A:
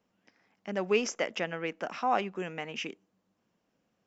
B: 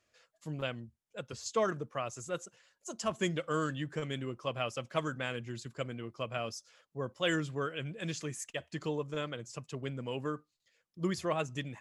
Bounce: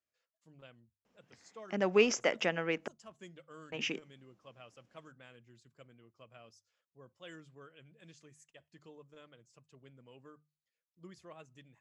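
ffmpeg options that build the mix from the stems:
-filter_complex "[0:a]adelay=1050,volume=1.12,asplit=3[s0][s1][s2];[s0]atrim=end=2.88,asetpts=PTS-STARTPTS,afade=t=out:st=2.876:d=0.004:c=hsin[s3];[s1]atrim=start=2.88:end=3.72,asetpts=PTS-STARTPTS,volume=0[s4];[s2]atrim=start=3.72,asetpts=PTS-STARTPTS,afade=t=in:d=0.004:c=hsin[s5];[s3][s4][s5]concat=n=3:v=0:a=1[s6];[1:a]volume=0.106[s7];[s6][s7]amix=inputs=2:normalize=0,lowpass=9900,bandreject=f=50:t=h:w=6,bandreject=f=100:t=h:w=6,bandreject=f=150:t=h:w=6"

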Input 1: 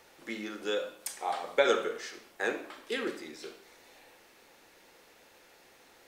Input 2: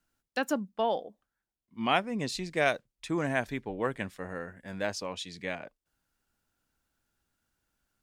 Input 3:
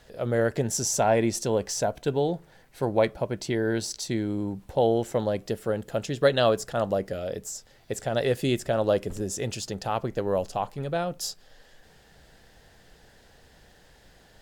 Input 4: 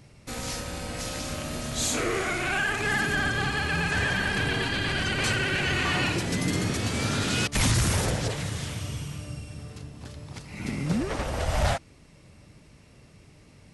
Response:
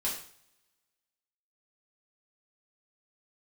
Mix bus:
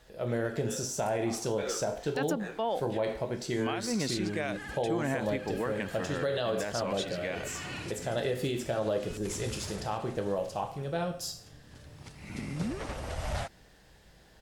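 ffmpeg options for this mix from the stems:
-filter_complex "[0:a]bandreject=f=2100:w=12,flanger=delay=16:depth=6.4:speed=2.4,volume=0.376[s0];[1:a]alimiter=limit=0.112:level=0:latency=1:release=162,adelay=1800,volume=1.33[s1];[2:a]deesser=0.55,volume=0.376,asplit=3[s2][s3][s4];[s3]volume=0.596[s5];[3:a]dynaudnorm=f=240:g=21:m=3.76,adelay=1700,volume=0.15[s6];[s4]apad=whole_len=680670[s7];[s6][s7]sidechaincompress=threshold=0.00631:ratio=8:attack=16:release=1350[s8];[4:a]atrim=start_sample=2205[s9];[s5][s9]afir=irnorm=-1:irlink=0[s10];[s0][s1][s2][s8][s10]amix=inputs=5:normalize=0,alimiter=limit=0.0841:level=0:latency=1:release=74"

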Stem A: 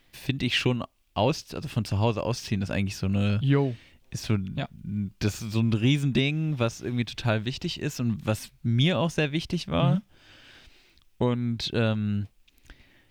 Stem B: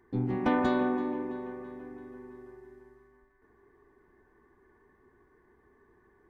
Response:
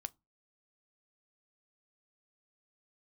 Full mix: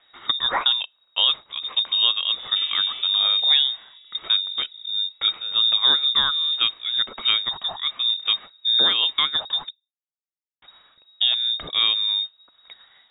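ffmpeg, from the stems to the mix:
-filter_complex "[0:a]volume=1.26,asplit=3[s0][s1][s2];[s0]atrim=end=9.7,asetpts=PTS-STARTPTS,afade=t=out:st=9.696:d=0.004:c=hsin[s3];[s1]atrim=start=9.7:end=10.62,asetpts=PTS-STARTPTS,volume=0[s4];[s2]atrim=start=10.62,asetpts=PTS-STARTPTS,afade=t=in:d=0.004:c=hsin[s5];[s3][s4][s5]concat=n=3:v=0:a=1,asplit=2[s6][s7];[s7]volume=0.335[s8];[1:a]adelay=2100,volume=0.447[s9];[2:a]atrim=start_sample=2205[s10];[s8][s10]afir=irnorm=-1:irlink=0[s11];[s6][s9][s11]amix=inputs=3:normalize=0,lowpass=f=3200:t=q:w=0.5098,lowpass=f=3200:t=q:w=0.6013,lowpass=f=3200:t=q:w=0.9,lowpass=f=3200:t=q:w=2.563,afreqshift=-3800"

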